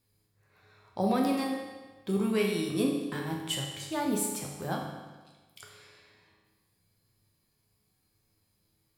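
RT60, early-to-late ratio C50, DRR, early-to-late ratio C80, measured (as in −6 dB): 1.3 s, 3.0 dB, −1.0 dB, 5.0 dB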